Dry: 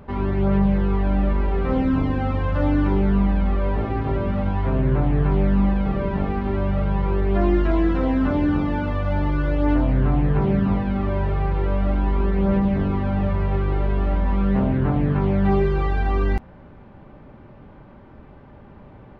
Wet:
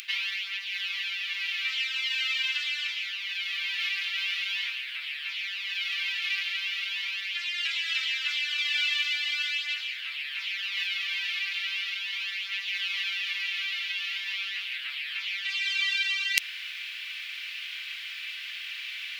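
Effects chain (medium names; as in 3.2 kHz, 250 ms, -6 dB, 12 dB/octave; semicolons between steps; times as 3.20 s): reverse; compression 8:1, threshold -33 dBFS, peak gain reduction 18.5 dB; reverse; steep high-pass 2.5 kHz 36 dB/octave; loudness maximiser +36 dB; trim -1 dB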